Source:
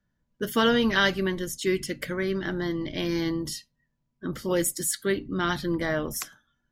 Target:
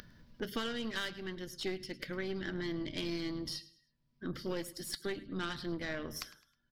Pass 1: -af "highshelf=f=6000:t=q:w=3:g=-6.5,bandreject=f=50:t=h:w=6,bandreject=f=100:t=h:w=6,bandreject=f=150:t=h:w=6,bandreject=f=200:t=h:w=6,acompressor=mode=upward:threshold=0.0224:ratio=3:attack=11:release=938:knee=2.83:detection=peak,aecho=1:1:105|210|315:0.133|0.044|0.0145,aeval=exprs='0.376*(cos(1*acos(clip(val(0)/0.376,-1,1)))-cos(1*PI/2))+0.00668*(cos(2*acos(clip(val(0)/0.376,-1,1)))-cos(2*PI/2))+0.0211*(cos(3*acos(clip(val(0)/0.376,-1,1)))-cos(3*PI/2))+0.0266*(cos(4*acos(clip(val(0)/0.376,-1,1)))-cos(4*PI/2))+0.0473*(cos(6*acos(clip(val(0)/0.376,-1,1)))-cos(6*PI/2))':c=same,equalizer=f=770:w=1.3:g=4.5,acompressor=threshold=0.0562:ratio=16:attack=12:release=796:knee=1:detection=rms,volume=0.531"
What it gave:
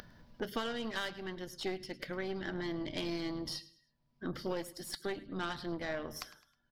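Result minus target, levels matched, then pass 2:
1 kHz band +3.5 dB
-af "highshelf=f=6000:t=q:w=3:g=-6.5,bandreject=f=50:t=h:w=6,bandreject=f=100:t=h:w=6,bandreject=f=150:t=h:w=6,bandreject=f=200:t=h:w=6,acompressor=mode=upward:threshold=0.0224:ratio=3:attack=11:release=938:knee=2.83:detection=peak,aecho=1:1:105|210|315:0.133|0.044|0.0145,aeval=exprs='0.376*(cos(1*acos(clip(val(0)/0.376,-1,1)))-cos(1*PI/2))+0.00668*(cos(2*acos(clip(val(0)/0.376,-1,1)))-cos(2*PI/2))+0.0211*(cos(3*acos(clip(val(0)/0.376,-1,1)))-cos(3*PI/2))+0.0266*(cos(4*acos(clip(val(0)/0.376,-1,1)))-cos(4*PI/2))+0.0473*(cos(6*acos(clip(val(0)/0.376,-1,1)))-cos(6*PI/2))':c=same,equalizer=f=770:w=1.3:g=-4.5,acompressor=threshold=0.0562:ratio=16:attack=12:release=796:knee=1:detection=rms,volume=0.531"

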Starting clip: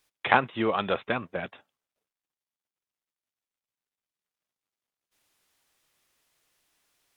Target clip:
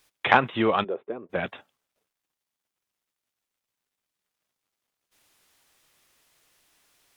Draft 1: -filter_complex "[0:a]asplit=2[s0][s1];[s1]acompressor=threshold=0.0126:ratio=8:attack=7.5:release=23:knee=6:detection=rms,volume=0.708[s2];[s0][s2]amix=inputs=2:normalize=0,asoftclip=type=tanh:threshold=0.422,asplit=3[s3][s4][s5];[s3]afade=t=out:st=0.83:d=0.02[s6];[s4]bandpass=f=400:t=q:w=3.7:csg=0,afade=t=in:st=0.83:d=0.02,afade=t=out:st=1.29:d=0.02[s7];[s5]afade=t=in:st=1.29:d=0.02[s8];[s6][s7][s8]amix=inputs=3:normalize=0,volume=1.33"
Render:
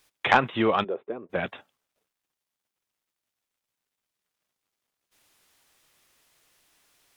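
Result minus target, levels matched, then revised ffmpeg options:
saturation: distortion +10 dB
-filter_complex "[0:a]asplit=2[s0][s1];[s1]acompressor=threshold=0.0126:ratio=8:attack=7.5:release=23:knee=6:detection=rms,volume=0.708[s2];[s0][s2]amix=inputs=2:normalize=0,asoftclip=type=tanh:threshold=0.891,asplit=3[s3][s4][s5];[s3]afade=t=out:st=0.83:d=0.02[s6];[s4]bandpass=f=400:t=q:w=3.7:csg=0,afade=t=in:st=0.83:d=0.02,afade=t=out:st=1.29:d=0.02[s7];[s5]afade=t=in:st=1.29:d=0.02[s8];[s6][s7][s8]amix=inputs=3:normalize=0,volume=1.33"

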